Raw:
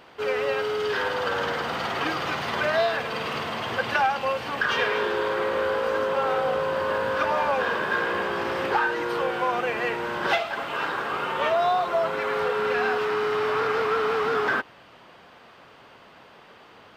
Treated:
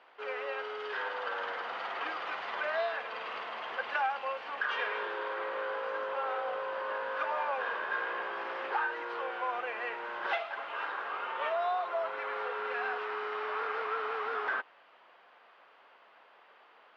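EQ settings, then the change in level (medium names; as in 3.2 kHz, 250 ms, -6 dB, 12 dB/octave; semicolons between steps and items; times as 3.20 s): band-pass 600–2800 Hz; -7.5 dB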